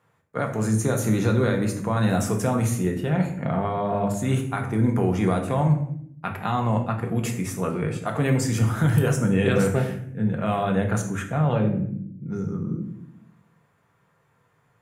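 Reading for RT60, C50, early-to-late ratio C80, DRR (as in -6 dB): 0.65 s, 8.5 dB, 12.0 dB, 2.0 dB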